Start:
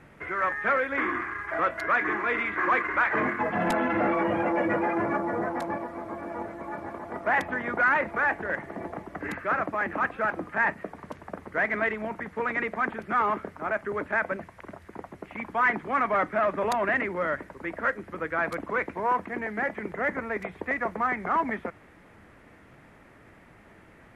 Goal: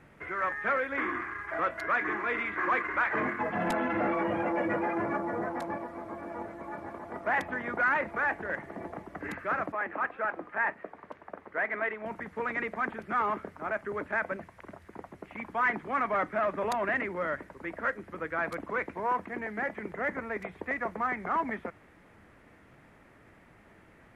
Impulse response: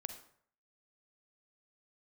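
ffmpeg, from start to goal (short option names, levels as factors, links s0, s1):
-filter_complex "[0:a]asettb=1/sr,asplit=3[s0][s1][s2];[s0]atrim=end=9.724[s3];[s1]atrim=start=9.72:end=12.06,asetpts=PTS-STARTPTS,afade=t=in:d=0.004:c=qsin,afade=t=out:st=2.336:d=0.004:c=qsin,bass=f=250:g=-12,treble=f=4000:g=-14[s4];[s2]atrim=start=12.056[s5];[s3][s4]acrossfade=d=0.004:c1=hsin:c2=qsin[s6];[s6][s5]acrossfade=d=0.004:c1=qsin:c2=hsin,volume=0.631"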